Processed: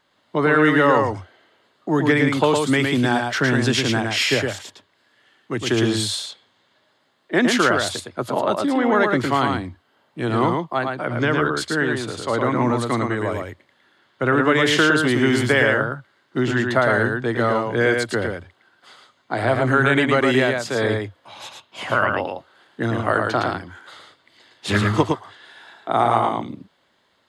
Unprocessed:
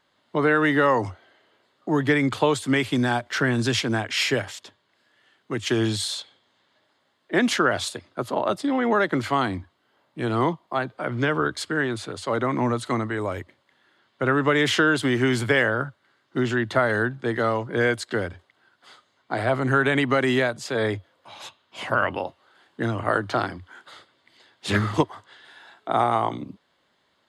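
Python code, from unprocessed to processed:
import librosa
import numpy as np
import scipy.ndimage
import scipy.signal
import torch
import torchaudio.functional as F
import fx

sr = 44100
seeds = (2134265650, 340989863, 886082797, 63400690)

y = x + 10.0 ** (-4.0 / 20.0) * np.pad(x, (int(111 * sr / 1000.0), 0))[:len(x)]
y = y * librosa.db_to_amplitude(2.5)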